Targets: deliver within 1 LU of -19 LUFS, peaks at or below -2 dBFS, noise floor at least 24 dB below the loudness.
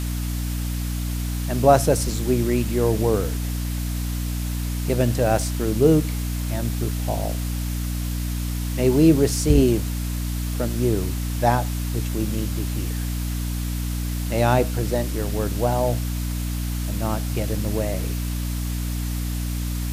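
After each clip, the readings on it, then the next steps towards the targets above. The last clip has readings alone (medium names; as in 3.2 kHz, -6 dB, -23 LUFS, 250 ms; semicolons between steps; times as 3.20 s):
hum 60 Hz; highest harmonic 300 Hz; hum level -23 dBFS; noise floor -26 dBFS; noise floor target -48 dBFS; loudness -23.5 LUFS; peak level -2.0 dBFS; loudness target -19.0 LUFS
-> hum notches 60/120/180/240/300 Hz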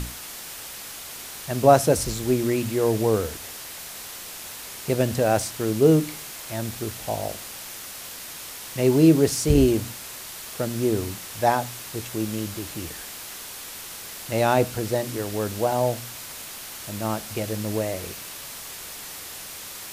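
hum not found; noise floor -38 dBFS; noise floor target -50 dBFS
-> noise reduction 12 dB, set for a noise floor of -38 dBFS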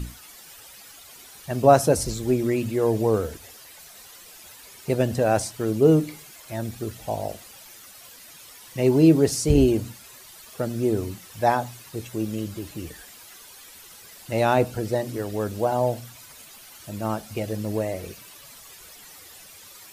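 noise floor -47 dBFS; noise floor target -48 dBFS
-> noise reduction 6 dB, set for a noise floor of -47 dBFS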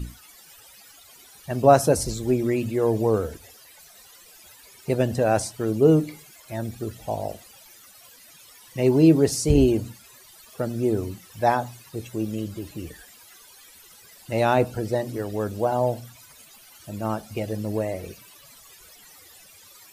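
noise floor -50 dBFS; loudness -23.5 LUFS; peak level -3.0 dBFS; loudness target -19.0 LUFS
-> trim +4.5 dB; peak limiter -2 dBFS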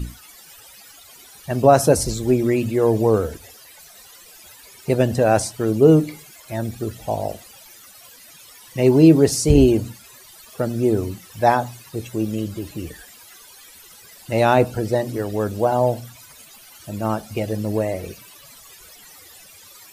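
loudness -19.5 LUFS; peak level -2.0 dBFS; noise floor -46 dBFS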